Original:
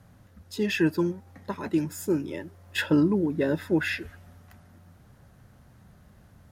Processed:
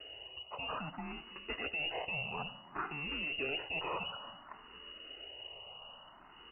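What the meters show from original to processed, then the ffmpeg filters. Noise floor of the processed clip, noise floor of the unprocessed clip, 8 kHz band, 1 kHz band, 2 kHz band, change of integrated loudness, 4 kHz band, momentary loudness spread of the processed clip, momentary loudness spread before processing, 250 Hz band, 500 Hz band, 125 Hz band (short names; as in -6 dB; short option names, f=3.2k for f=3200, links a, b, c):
-57 dBFS, -56 dBFS, under -35 dB, -0.5 dB, -5.5 dB, -12.5 dB, 0.0 dB, 15 LU, 16 LU, -23.5 dB, -15.0 dB, -18.0 dB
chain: -filter_complex "[0:a]alimiter=limit=-22dB:level=0:latency=1:release=13,areverse,acompressor=threshold=-39dB:ratio=5,areverse,acrusher=samples=14:mix=1:aa=0.000001,asuperstop=centerf=660:order=4:qfactor=1.9,asoftclip=type=hard:threshold=-39dB,asplit=2[a][b];[b]aecho=0:1:89|329:0.141|0.15[c];[a][c]amix=inputs=2:normalize=0,aexciter=amount=12:drive=3.6:freq=2.1k,lowpass=f=2.6k:t=q:w=0.5098,lowpass=f=2.6k:t=q:w=0.6013,lowpass=f=2.6k:t=q:w=0.9,lowpass=f=2.6k:t=q:w=2.563,afreqshift=-3000,asplit=2[d][e];[e]afreqshift=0.58[f];[d][f]amix=inputs=2:normalize=1,volume=4.5dB"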